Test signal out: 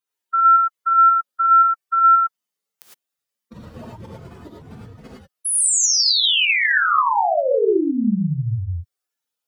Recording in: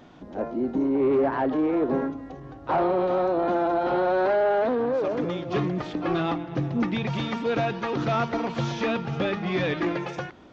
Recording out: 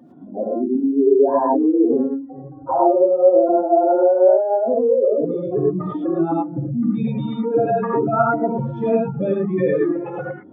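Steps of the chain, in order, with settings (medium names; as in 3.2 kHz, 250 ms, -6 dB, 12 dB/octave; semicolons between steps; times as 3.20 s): spectral contrast enhancement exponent 2.8; high-pass 140 Hz 12 dB/octave; gated-style reverb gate 130 ms rising, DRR -2.5 dB; trim +4 dB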